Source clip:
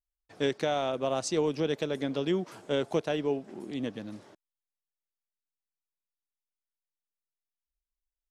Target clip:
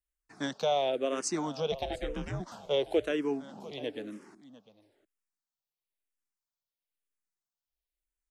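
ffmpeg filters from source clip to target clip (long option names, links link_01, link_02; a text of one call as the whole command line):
ffmpeg -i in.wav -filter_complex "[0:a]acrossover=split=180[link_01][link_02];[link_01]acompressor=threshold=-59dB:ratio=6[link_03];[link_03][link_02]amix=inputs=2:normalize=0,asplit=3[link_04][link_05][link_06];[link_04]afade=type=out:start_time=1.71:duration=0.02[link_07];[link_05]aeval=exprs='val(0)*sin(2*PI*240*n/s)':channel_layout=same,afade=type=in:start_time=1.71:duration=0.02,afade=type=out:start_time=2.39:duration=0.02[link_08];[link_06]afade=type=in:start_time=2.39:duration=0.02[link_09];[link_07][link_08][link_09]amix=inputs=3:normalize=0,aecho=1:1:700:0.141,asplit=2[link_10][link_11];[link_11]afreqshift=-1[link_12];[link_10][link_12]amix=inputs=2:normalize=1,volume=2.5dB" out.wav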